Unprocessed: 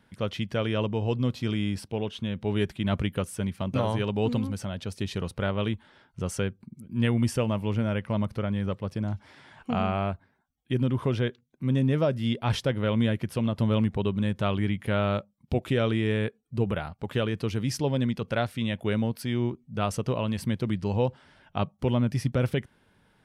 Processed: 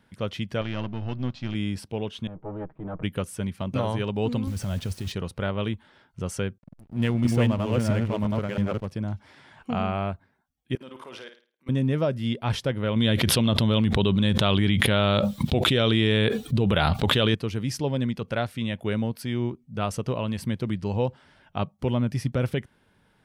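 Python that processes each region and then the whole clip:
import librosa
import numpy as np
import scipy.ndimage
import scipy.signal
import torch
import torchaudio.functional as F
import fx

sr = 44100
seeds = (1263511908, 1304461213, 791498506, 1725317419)

y = fx.chain(x, sr, fx.halfwave_gain(db=-7.0),
    fx.lowpass(hz=5800.0, slope=24),
    fx.peak_eq(hz=450.0, db=-11.0, octaves=0.38), at=(0.61, 1.55))
y = fx.chain(y, sr, fx.lower_of_two(delay_ms=6.4),
    fx.ladder_lowpass(hz=1400.0, resonance_pct=25), at=(2.27, 3.03))
y = fx.chain(y, sr, fx.low_shelf(hz=160.0, db=11.5),
    fx.over_compress(threshold_db=-28.0, ratio=-1.0),
    fx.quant_dither(seeds[0], bits=8, dither='none'), at=(4.47, 5.12))
y = fx.chain(y, sr, fx.reverse_delay(ms=333, wet_db=0),
    fx.backlash(play_db=-36.0), at=(6.58, 8.88))
y = fx.chain(y, sr, fx.highpass(hz=560.0, slope=12),
    fx.level_steps(step_db=21),
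    fx.room_flutter(wall_m=9.2, rt60_s=0.38), at=(10.75, 11.69))
y = fx.chain(y, sr, fx.peak_eq(hz=3600.0, db=11.5, octaves=0.59),
    fx.env_flatten(amount_pct=100), at=(12.96, 17.35))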